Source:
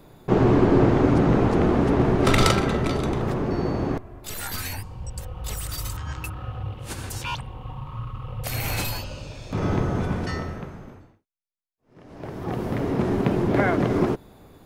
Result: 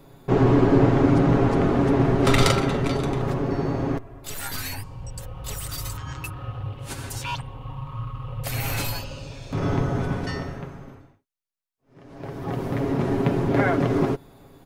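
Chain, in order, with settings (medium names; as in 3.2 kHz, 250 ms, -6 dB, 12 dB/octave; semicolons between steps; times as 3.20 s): comb 7.3 ms, depth 49%; trim -1 dB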